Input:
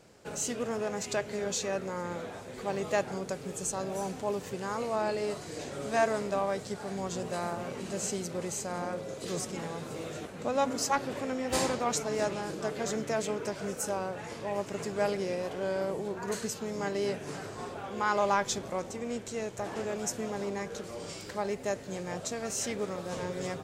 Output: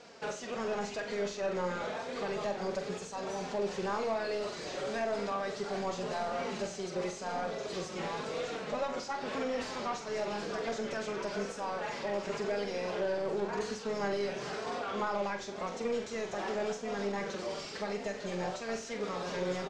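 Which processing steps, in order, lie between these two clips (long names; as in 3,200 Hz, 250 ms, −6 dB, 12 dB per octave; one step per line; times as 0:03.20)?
parametric band 5,400 Hz +13.5 dB 1.9 octaves
downward compressor 6 to 1, threshold −30 dBFS, peak gain reduction 13 dB
flanger 0.79 Hz, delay 4.1 ms, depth 1.4 ms, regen +23%
tempo change 1.2×
mid-hump overdrive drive 19 dB, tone 1,100 Hz, clips at −23 dBFS
high-frequency loss of the air 62 metres
flutter between parallel walls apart 7.6 metres, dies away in 0.35 s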